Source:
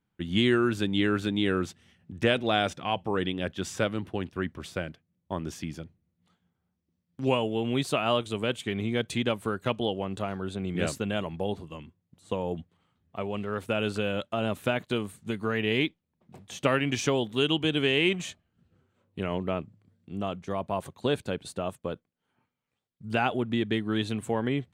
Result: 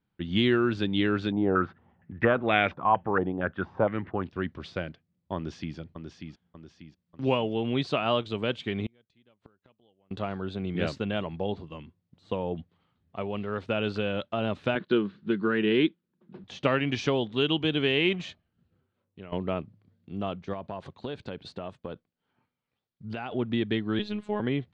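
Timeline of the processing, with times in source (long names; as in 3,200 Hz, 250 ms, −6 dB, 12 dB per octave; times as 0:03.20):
0:01.32–0:04.23: low-pass on a step sequencer 4.3 Hz 780–2,200 Hz
0:05.36–0:05.76: delay throw 590 ms, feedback 45%, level −6 dB
0:08.86–0:10.11: gate with flip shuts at −26 dBFS, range −36 dB
0:14.75–0:16.44: loudspeaker in its box 160–4,400 Hz, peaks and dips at 190 Hz +10 dB, 350 Hz +10 dB, 710 Hz −9 dB, 1,500 Hz +7 dB, 2,200 Hz −4 dB
0:18.17–0:19.32: fade out linear, to −15 dB
0:20.53–0:23.32: downward compressor 5 to 1, threshold −31 dBFS
0:23.99–0:24.40: phases set to zero 209 Hz
whole clip: Chebyshev low-pass filter 4,600 Hz, order 3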